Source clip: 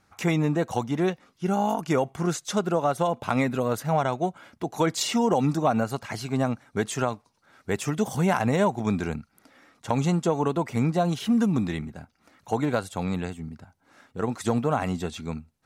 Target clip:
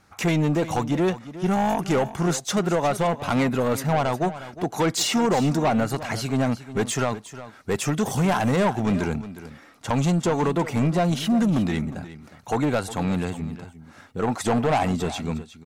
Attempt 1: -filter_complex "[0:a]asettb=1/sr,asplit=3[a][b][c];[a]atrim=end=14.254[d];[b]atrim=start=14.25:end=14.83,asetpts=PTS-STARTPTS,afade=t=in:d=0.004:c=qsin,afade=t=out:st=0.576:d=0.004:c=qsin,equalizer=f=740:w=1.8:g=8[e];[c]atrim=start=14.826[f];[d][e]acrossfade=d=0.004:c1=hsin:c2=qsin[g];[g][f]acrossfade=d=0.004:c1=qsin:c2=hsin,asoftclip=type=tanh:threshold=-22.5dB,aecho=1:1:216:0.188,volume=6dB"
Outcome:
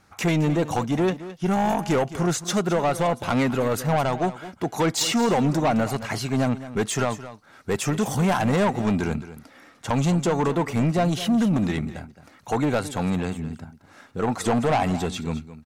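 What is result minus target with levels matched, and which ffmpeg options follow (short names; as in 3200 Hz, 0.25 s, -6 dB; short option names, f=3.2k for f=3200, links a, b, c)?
echo 0.144 s early
-filter_complex "[0:a]asettb=1/sr,asplit=3[a][b][c];[a]atrim=end=14.254[d];[b]atrim=start=14.25:end=14.83,asetpts=PTS-STARTPTS,afade=t=in:d=0.004:c=qsin,afade=t=out:st=0.576:d=0.004:c=qsin,equalizer=f=740:w=1.8:g=8[e];[c]atrim=start=14.826[f];[d][e]acrossfade=d=0.004:c1=hsin:c2=qsin[g];[g][f]acrossfade=d=0.004:c1=qsin:c2=hsin,asoftclip=type=tanh:threshold=-22.5dB,aecho=1:1:360:0.188,volume=6dB"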